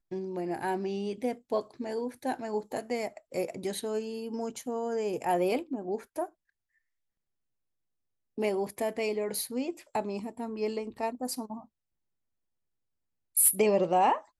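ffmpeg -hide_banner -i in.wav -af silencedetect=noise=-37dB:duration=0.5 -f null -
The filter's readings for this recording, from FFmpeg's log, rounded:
silence_start: 6.26
silence_end: 8.38 | silence_duration: 2.12
silence_start: 11.59
silence_end: 13.37 | silence_duration: 1.78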